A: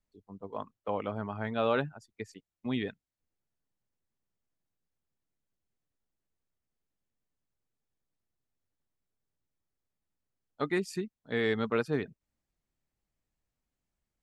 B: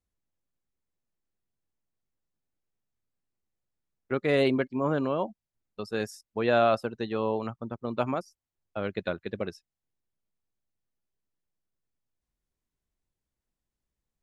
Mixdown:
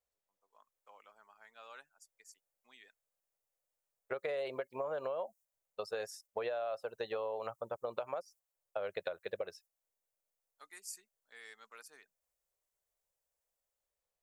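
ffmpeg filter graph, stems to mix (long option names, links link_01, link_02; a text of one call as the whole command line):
ffmpeg -i stem1.wav -i stem2.wav -filter_complex "[0:a]highpass=1100,dynaudnorm=framelen=170:gausssize=7:maxgain=10dB,aexciter=amount=11.3:drive=3.7:freq=5300,volume=-17.5dB[link_01];[1:a]lowshelf=frequency=380:width_type=q:width=3:gain=-12,acompressor=threshold=-28dB:ratio=6,volume=-2.5dB,asplit=2[link_02][link_03];[link_03]apad=whole_len=627206[link_04];[link_01][link_04]sidechaingate=range=-10dB:threshold=-59dB:ratio=16:detection=peak[link_05];[link_05][link_02]amix=inputs=2:normalize=0,acompressor=threshold=-34dB:ratio=6" out.wav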